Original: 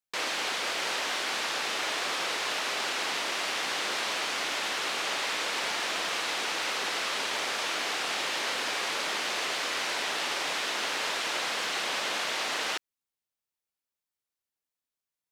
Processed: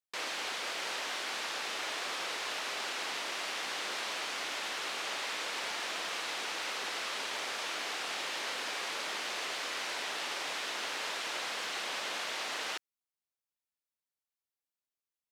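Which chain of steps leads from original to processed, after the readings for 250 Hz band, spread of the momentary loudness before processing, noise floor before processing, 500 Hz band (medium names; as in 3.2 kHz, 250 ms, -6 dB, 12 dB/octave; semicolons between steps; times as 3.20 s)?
-7.5 dB, 0 LU, under -85 dBFS, -6.5 dB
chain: bass shelf 180 Hz -5 dB; trim -6 dB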